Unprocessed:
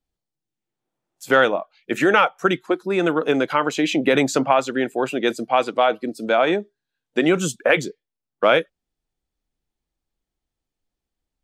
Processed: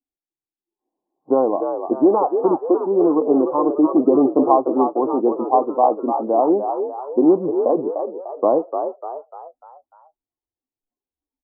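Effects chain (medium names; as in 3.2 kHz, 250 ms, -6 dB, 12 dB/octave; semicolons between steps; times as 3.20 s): spectral noise reduction 14 dB; rippled Chebyshev low-pass 1.1 kHz, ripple 6 dB; resonant low shelf 220 Hz -8.5 dB, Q 1.5; on a send: frequency-shifting echo 298 ms, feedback 44%, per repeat +61 Hz, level -7 dB; on the sum: trim +4.5 dB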